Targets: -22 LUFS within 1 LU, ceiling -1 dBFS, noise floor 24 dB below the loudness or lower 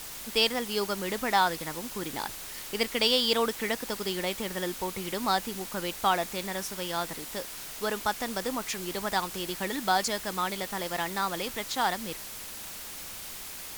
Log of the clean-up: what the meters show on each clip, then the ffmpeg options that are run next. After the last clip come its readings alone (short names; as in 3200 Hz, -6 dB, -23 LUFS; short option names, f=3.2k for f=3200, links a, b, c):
noise floor -41 dBFS; noise floor target -54 dBFS; loudness -30.0 LUFS; peak -10.5 dBFS; loudness target -22.0 LUFS
-> -af "afftdn=nr=13:nf=-41"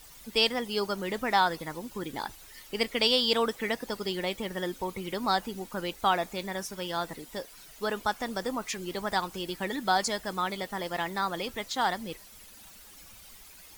noise floor -51 dBFS; noise floor target -55 dBFS
-> -af "afftdn=nr=6:nf=-51"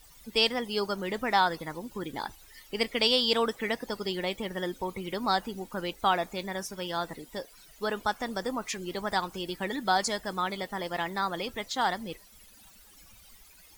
noise floor -55 dBFS; loudness -30.5 LUFS; peak -10.5 dBFS; loudness target -22.0 LUFS
-> -af "volume=8.5dB"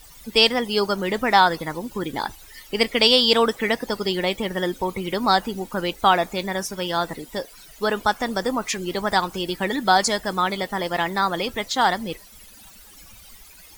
loudness -22.0 LUFS; peak -2.0 dBFS; noise floor -47 dBFS